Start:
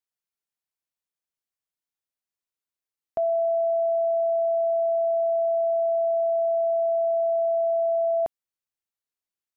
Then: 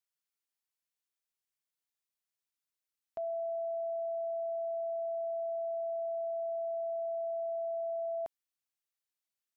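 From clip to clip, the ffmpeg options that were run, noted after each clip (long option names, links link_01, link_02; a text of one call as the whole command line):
ffmpeg -i in.wav -af "tiltshelf=frequency=970:gain=-4,alimiter=level_in=4.5dB:limit=-24dB:level=0:latency=1,volume=-4.5dB,volume=-4dB" out.wav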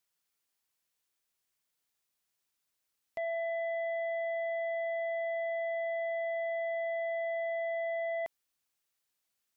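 ffmpeg -i in.wav -af "aeval=exprs='0.0251*sin(PI/2*1.58*val(0)/0.0251)':channel_layout=same" out.wav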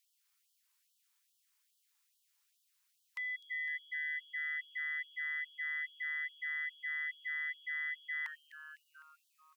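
ffmpeg -i in.wav -filter_complex "[0:a]asplit=8[link_01][link_02][link_03][link_04][link_05][link_06][link_07][link_08];[link_02]adelay=253,afreqshift=-150,volume=-10dB[link_09];[link_03]adelay=506,afreqshift=-300,volume=-14.6dB[link_10];[link_04]adelay=759,afreqshift=-450,volume=-19.2dB[link_11];[link_05]adelay=1012,afreqshift=-600,volume=-23.7dB[link_12];[link_06]adelay=1265,afreqshift=-750,volume=-28.3dB[link_13];[link_07]adelay=1518,afreqshift=-900,volume=-32.9dB[link_14];[link_08]adelay=1771,afreqshift=-1050,volume=-37.5dB[link_15];[link_01][link_09][link_10][link_11][link_12][link_13][link_14][link_15]amix=inputs=8:normalize=0,afftfilt=real='re*gte(b*sr/1024,780*pow(2900/780,0.5+0.5*sin(2*PI*2.4*pts/sr)))':imag='im*gte(b*sr/1024,780*pow(2900/780,0.5+0.5*sin(2*PI*2.4*pts/sr)))':win_size=1024:overlap=0.75,volume=5dB" out.wav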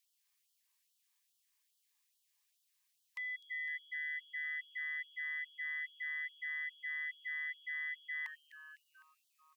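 ffmpeg -i in.wav -af "asuperstop=centerf=1400:order=4:qfactor=5.4,volume=-2dB" out.wav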